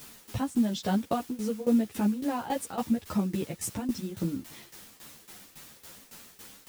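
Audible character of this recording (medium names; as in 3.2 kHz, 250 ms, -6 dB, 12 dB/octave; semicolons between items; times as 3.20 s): a quantiser's noise floor 8-bit, dither triangular; tremolo saw down 3.6 Hz, depth 85%; a shimmering, thickened sound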